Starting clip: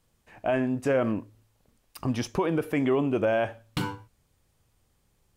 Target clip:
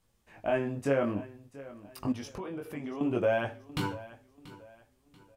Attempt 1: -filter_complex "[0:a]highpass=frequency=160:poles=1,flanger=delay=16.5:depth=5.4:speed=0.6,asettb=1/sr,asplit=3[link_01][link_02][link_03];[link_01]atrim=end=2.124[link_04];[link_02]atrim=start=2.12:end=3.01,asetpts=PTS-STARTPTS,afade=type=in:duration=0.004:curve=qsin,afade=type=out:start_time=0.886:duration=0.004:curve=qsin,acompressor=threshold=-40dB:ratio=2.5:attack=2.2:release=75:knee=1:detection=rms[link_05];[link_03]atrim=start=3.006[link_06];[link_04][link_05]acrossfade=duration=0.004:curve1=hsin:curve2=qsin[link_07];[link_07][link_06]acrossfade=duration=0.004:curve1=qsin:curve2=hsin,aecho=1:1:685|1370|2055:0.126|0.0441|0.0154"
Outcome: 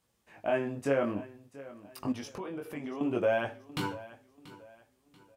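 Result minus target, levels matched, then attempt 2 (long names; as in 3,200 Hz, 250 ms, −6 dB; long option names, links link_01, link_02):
125 Hz band −3.5 dB
-filter_complex "[0:a]flanger=delay=16.5:depth=5.4:speed=0.6,asettb=1/sr,asplit=3[link_01][link_02][link_03];[link_01]atrim=end=2.124[link_04];[link_02]atrim=start=2.12:end=3.01,asetpts=PTS-STARTPTS,afade=type=in:duration=0.004:curve=qsin,afade=type=out:start_time=0.886:duration=0.004:curve=qsin,acompressor=threshold=-40dB:ratio=2.5:attack=2.2:release=75:knee=1:detection=rms[link_05];[link_03]atrim=start=3.006[link_06];[link_04][link_05]acrossfade=duration=0.004:curve1=hsin:curve2=qsin[link_07];[link_07][link_06]acrossfade=duration=0.004:curve1=qsin:curve2=hsin,aecho=1:1:685|1370|2055:0.126|0.0441|0.0154"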